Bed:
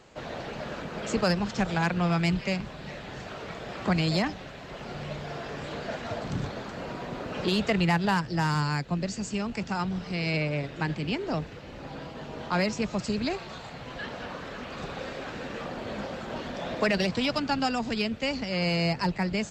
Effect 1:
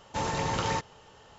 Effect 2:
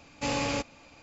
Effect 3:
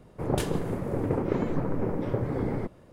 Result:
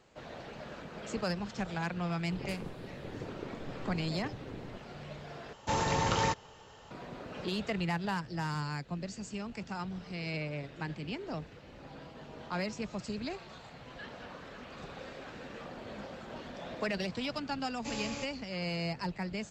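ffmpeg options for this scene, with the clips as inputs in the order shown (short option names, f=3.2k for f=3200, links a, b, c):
-filter_complex "[0:a]volume=-9dB[a];[2:a]highshelf=f=6.2k:g=9[b];[a]asplit=2[c][d];[c]atrim=end=5.534[e];[1:a]atrim=end=1.38[f];[d]atrim=start=6.906[g];[3:a]atrim=end=2.92,asetpts=PTS-STARTPTS,volume=-15.5dB,afade=t=in:d=0.004:c=hsin,afade=t=out:st=2.916:d=0.004:c=hsin,adelay=2110[h];[b]atrim=end=1.02,asetpts=PTS-STARTPTS,volume=-11.5dB,afade=t=in:d=0.004:c=hsin,afade=t=out:st=1.016:d=0.004:c=hsin,adelay=17630[i];[e][f]acrossfade=d=0.004:c1=hsin:c2=hsin[j];[j][g]acrossfade=d=0.004:c1=hsin:c2=hsin[k];[k][h][i]amix=inputs=3:normalize=0"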